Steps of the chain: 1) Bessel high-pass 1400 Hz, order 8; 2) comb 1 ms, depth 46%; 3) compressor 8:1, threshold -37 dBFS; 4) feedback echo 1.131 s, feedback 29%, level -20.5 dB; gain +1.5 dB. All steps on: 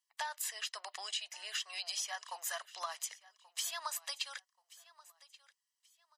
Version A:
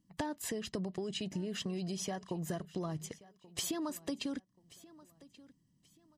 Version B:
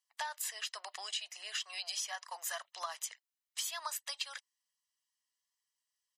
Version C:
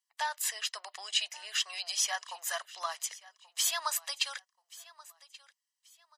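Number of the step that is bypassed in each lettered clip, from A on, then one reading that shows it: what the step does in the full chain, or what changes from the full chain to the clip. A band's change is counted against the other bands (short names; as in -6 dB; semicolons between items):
1, 500 Hz band +16.5 dB; 4, momentary loudness spread change -9 LU; 3, mean gain reduction 4.5 dB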